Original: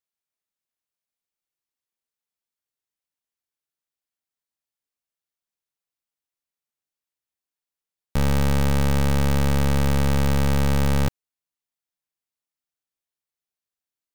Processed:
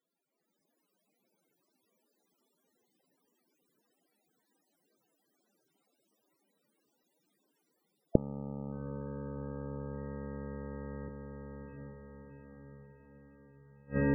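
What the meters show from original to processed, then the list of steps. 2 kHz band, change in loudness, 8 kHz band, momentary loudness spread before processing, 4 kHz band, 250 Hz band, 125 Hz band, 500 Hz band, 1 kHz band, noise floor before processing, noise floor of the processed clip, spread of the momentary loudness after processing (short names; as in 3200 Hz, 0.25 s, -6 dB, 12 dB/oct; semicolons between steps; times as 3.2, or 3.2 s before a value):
-15.0 dB, -17.0 dB, under -35 dB, 3 LU, under -40 dB, -11.5 dB, -17.5 dB, -9.0 dB, -18.5 dB, under -85 dBFS, -81 dBFS, 26 LU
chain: HPF 130 Hz 12 dB/oct; bell 270 Hz +8 dB 2.4 oct; AGC gain up to 9.5 dB; limiter -6.5 dBFS, peak gain reduction 4.5 dB; diffused feedback echo 0.7 s, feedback 59%, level -4 dB; flipped gate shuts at -26 dBFS, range -35 dB; loudest bins only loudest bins 32; gain +11 dB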